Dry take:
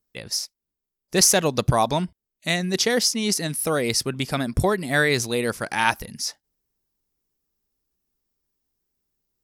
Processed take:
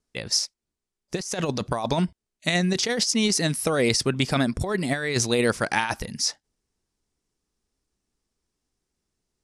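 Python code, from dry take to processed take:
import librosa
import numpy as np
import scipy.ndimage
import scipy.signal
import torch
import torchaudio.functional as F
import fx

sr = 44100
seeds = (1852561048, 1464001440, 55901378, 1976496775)

y = fx.over_compress(x, sr, threshold_db=-23.0, ratio=-0.5)
y = scipy.signal.sosfilt(scipy.signal.butter(4, 9400.0, 'lowpass', fs=sr, output='sos'), y)
y = y * 10.0 ** (1.0 / 20.0)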